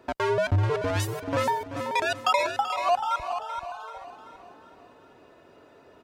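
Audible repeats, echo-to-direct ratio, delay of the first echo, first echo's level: 4, -10.5 dB, 384 ms, -12.0 dB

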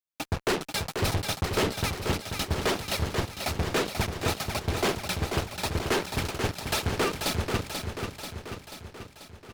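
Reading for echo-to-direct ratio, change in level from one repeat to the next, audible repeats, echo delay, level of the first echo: -4.0 dB, -4.5 dB, 7, 487 ms, -6.0 dB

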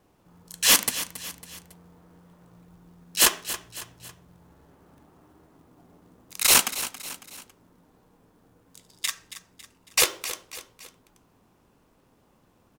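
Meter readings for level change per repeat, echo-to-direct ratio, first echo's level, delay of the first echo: -6.5 dB, -12.5 dB, -13.5 dB, 276 ms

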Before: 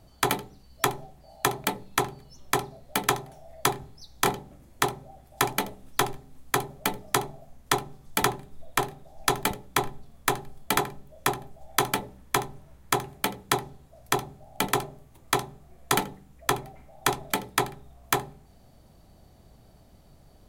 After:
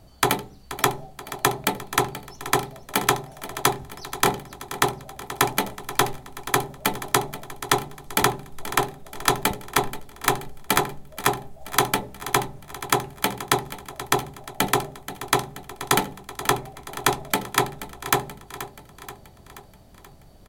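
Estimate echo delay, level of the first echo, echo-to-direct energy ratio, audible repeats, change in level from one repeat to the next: 480 ms, -14.0 dB, -12.5 dB, 5, -5.0 dB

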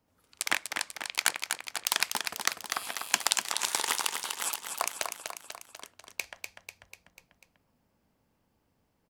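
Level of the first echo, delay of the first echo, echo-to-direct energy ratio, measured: -6.0 dB, 246 ms, -4.5 dB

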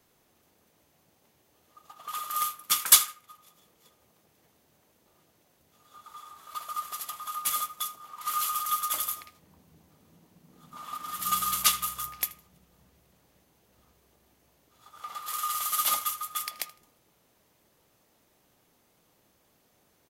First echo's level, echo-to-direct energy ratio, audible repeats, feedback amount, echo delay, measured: -20.5 dB, -20.5 dB, 2, 23%, 79 ms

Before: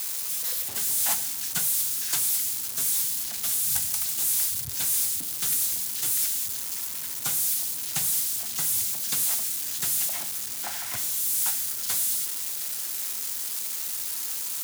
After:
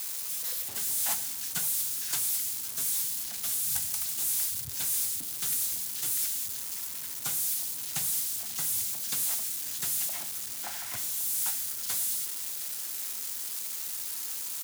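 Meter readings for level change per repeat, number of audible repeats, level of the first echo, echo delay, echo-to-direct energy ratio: no regular repeats, 1, -19.0 dB, 539 ms, -19.0 dB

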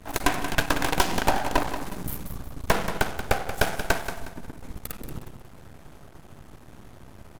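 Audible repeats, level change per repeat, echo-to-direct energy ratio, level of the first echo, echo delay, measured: 3, -10.0 dB, -9.5 dB, -10.0 dB, 181 ms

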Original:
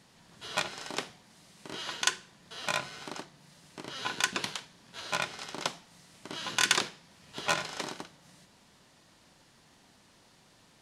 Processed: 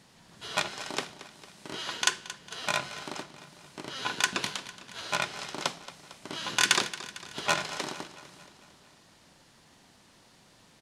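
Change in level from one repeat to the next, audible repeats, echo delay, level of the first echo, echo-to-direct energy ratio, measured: -4.5 dB, 5, 226 ms, -15.5 dB, -13.5 dB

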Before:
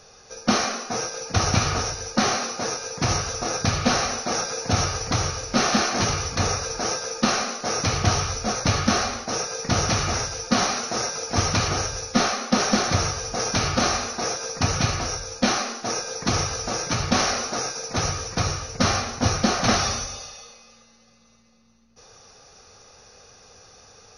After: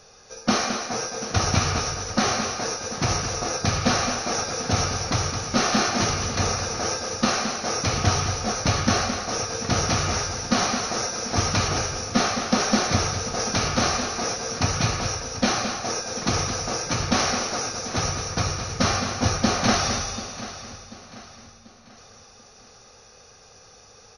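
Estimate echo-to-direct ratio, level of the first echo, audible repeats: -7.5 dB, -8.5 dB, 6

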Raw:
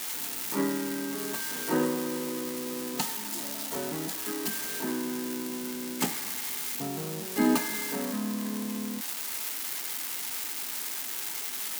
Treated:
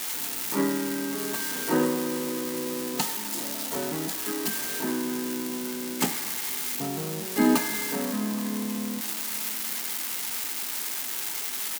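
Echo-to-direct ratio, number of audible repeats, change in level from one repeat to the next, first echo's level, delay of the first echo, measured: -19.5 dB, 2, -9.0 dB, -20.0 dB, 825 ms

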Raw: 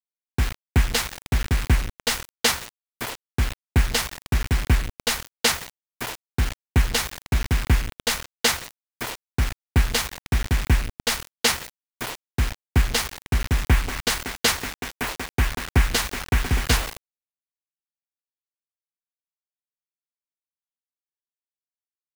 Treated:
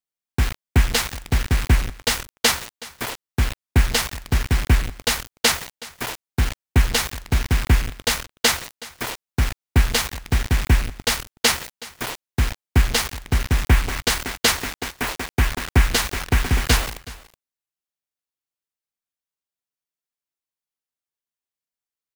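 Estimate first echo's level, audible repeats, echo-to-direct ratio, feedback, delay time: -19.5 dB, 1, -19.5 dB, no regular repeats, 372 ms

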